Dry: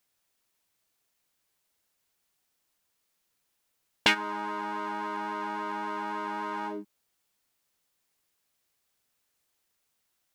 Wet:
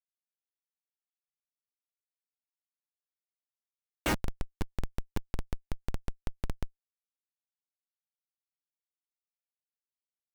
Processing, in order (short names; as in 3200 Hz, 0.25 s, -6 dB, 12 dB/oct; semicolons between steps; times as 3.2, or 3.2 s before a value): Schmitt trigger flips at -23.5 dBFS; gain +11 dB